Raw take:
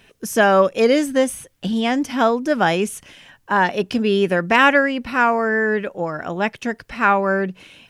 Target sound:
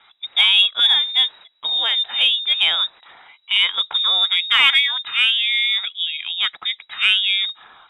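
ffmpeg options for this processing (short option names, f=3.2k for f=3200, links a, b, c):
-af "lowpass=f=3.3k:t=q:w=0.5098,lowpass=f=3.3k:t=q:w=0.6013,lowpass=f=3.3k:t=q:w=0.9,lowpass=f=3.3k:t=q:w=2.563,afreqshift=-3900,aeval=exprs='1*(cos(1*acos(clip(val(0)/1,-1,1)))-cos(1*PI/2))+0.0178*(cos(2*acos(clip(val(0)/1,-1,1)))-cos(2*PI/2))+0.02*(cos(5*acos(clip(val(0)/1,-1,1)))-cos(5*PI/2))':c=same,volume=-1dB"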